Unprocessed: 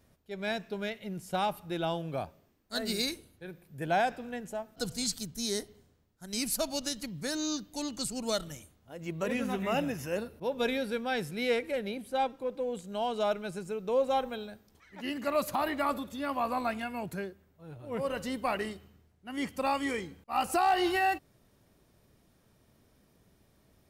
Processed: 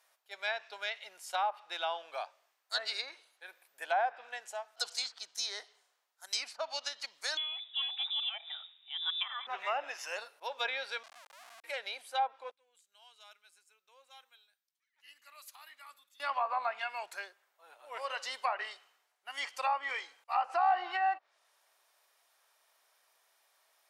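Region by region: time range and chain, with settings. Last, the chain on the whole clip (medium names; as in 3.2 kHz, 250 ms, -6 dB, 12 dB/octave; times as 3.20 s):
7.37–9.47 s: frequency inversion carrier 3.7 kHz + high-pass 520 Hz 24 dB/octave
11.03–11.64 s: block-companded coder 3-bit + Butterworth band-pass 200 Hz, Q 6.2 + Schmitt trigger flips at -57 dBFS
12.51–16.20 s: amplifier tone stack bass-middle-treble 6-0-2 + three bands expanded up and down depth 40%
whole clip: high-pass 760 Hz 24 dB/octave; low-pass that closes with the level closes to 1.2 kHz, closed at -29 dBFS; dynamic bell 4.8 kHz, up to +5 dB, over -57 dBFS, Q 1.2; trim +2 dB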